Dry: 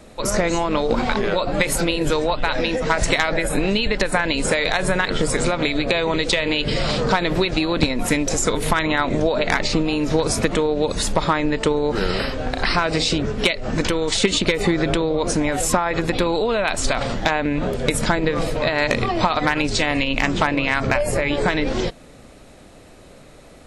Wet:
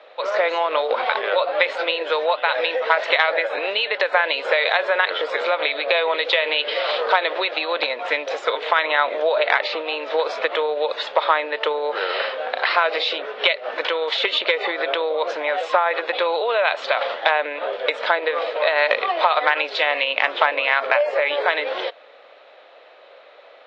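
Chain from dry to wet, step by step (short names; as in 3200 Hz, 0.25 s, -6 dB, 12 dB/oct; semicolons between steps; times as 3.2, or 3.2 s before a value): elliptic band-pass 520–3600 Hz, stop band 50 dB; gain +3 dB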